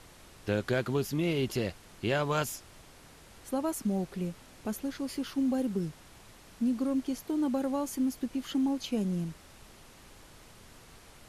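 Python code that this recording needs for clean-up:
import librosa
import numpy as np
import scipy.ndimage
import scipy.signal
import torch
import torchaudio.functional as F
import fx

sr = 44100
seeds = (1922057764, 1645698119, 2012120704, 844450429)

y = fx.noise_reduce(x, sr, print_start_s=2.81, print_end_s=3.31, reduce_db=23.0)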